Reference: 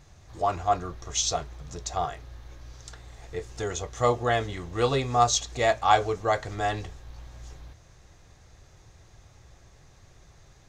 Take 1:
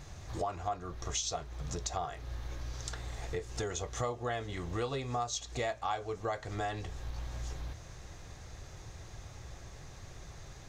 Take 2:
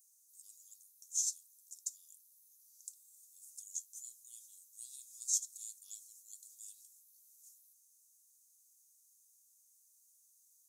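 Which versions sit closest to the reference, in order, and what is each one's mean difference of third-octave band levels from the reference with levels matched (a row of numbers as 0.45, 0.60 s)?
1, 2; 8.5, 22.0 dB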